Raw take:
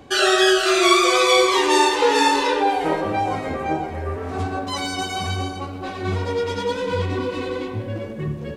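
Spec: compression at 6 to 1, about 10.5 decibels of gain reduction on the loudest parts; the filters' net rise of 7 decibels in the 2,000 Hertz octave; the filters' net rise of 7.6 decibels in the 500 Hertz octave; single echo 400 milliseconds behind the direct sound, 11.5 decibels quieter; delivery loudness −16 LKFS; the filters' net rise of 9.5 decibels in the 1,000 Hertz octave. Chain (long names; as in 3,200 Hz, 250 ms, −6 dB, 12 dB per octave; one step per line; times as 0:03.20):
parametric band 500 Hz +7.5 dB
parametric band 1,000 Hz +8 dB
parametric band 2,000 Hz +6 dB
downward compressor 6 to 1, threshold −15 dBFS
single-tap delay 400 ms −11.5 dB
level +3 dB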